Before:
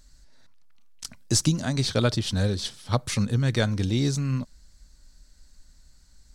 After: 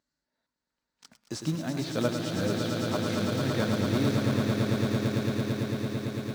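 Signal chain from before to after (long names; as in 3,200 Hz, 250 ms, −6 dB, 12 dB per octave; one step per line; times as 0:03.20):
high-shelf EQ 7,800 Hz −11.5 dB
harmonic and percussive parts rebalanced percussive −7 dB
high-shelf EQ 3,600 Hz −9.5 dB
on a send: echo that builds up and dies away 112 ms, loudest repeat 8, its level −6.5 dB
on the sum: noise reduction from a noise print of the clip's start 9 dB
high-pass filter 230 Hz 12 dB per octave
in parallel at −6 dB: log-companded quantiser 4 bits
on the sum: feedback echo at a low word length 103 ms, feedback 35%, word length 8 bits, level −7.5 dB
level −3.5 dB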